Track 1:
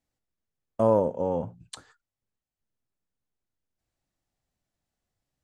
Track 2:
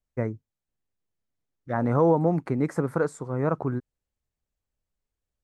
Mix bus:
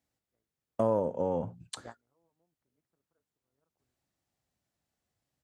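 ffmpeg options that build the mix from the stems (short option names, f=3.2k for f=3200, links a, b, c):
-filter_complex "[0:a]volume=0.5dB,asplit=2[a][b];[1:a]lowshelf=f=200:g=-6.5,tremolo=f=170:d=0.788,adelay=150,volume=-11.5dB[c];[b]apad=whole_len=246515[d];[c][d]sidechaingate=range=-41dB:threshold=-54dB:ratio=16:detection=peak[e];[a][e]amix=inputs=2:normalize=0,highpass=67,acompressor=threshold=-28dB:ratio=2"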